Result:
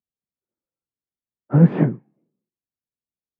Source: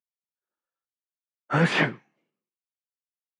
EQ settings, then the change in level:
resonant band-pass 240 Hz, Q 0.58
spectral tilt −4 dB per octave
+1.5 dB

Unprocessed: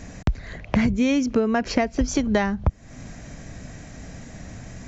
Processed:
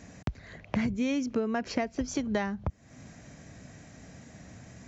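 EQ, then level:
high-pass filter 80 Hz 12 dB per octave
−8.5 dB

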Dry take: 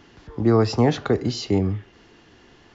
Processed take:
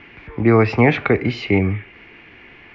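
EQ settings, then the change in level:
low-pass with resonance 2,300 Hz, resonance Q 9.9
+3.5 dB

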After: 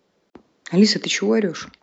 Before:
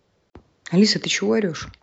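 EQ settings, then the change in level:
low shelf with overshoot 150 Hz −11.5 dB, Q 1.5
0.0 dB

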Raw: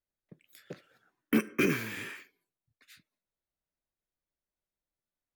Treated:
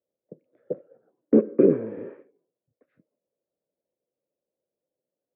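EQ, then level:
high-pass filter 170 Hz 12 dB per octave
low-pass with resonance 520 Hz, resonance Q 4.9
high-frequency loss of the air 370 metres
+7.0 dB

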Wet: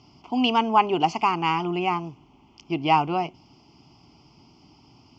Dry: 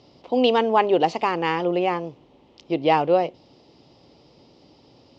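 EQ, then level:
phaser with its sweep stopped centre 2,600 Hz, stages 8
+3.0 dB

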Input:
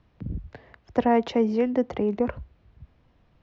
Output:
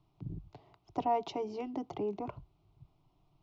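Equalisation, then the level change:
phaser with its sweep stopped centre 340 Hz, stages 8
−5.0 dB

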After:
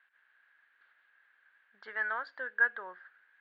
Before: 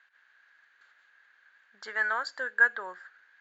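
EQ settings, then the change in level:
low-pass filter 3,400 Hz 24 dB per octave
−5.0 dB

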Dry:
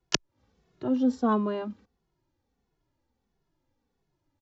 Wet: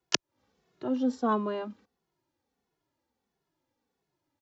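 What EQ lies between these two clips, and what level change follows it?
high-pass filter 300 Hz 6 dB per octave
0.0 dB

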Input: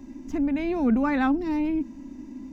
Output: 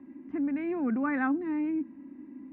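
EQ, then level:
dynamic equaliser 1,500 Hz, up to +4 dB, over −43 dBFS, Q 1.7
loudspeaker in its box 210–2,000 Hz, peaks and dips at 230 Hz −4 dB, 450 Hz −6 dB, 640 Hz −8 dB, 910 Hz −7 dB, 1,400 Hz −4 dB
−2.0 dB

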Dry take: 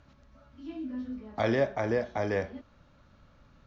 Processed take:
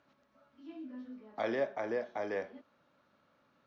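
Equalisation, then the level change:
high-pass filter 280 Hz 12 dB per octave
high-shelf EQ 5,700 Hz −9 dB
−5.5 dB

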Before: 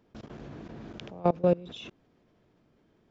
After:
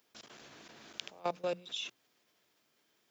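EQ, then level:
first difference
low-shelf EQ 130 Hz +4 dB
mains-hum notches 60/120/180 Hz
+11.5 dB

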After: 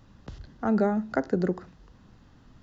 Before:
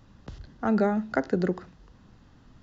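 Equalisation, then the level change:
dynamic equaliser 2,900 Hz, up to −6 dB, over −48 dBFS, Q 0.82
0.0 dB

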